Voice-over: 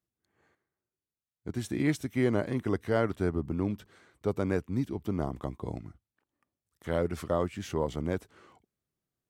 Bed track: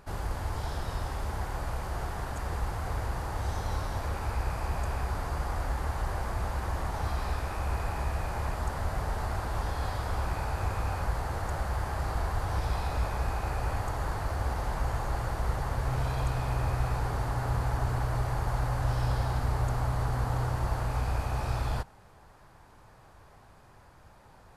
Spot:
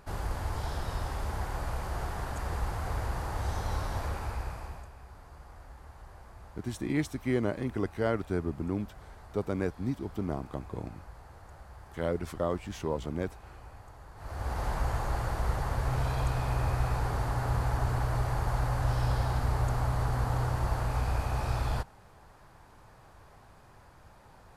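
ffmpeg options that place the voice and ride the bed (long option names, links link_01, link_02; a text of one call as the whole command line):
ffmpeg -i stem1.wav -i stem2.wav -filter_complex "[0:a]adelay=5100,volume=-2dB[link_01];[1:a]volume=17.5dB,afade=type=out:start_time=4:duration=0.9:silence=0.133352,afade=type=in:start_time=14.15:duration=0.5:silence=0.125893[link_02];[link_01][link_02]amix=inputs=2:normalize=0" out.wav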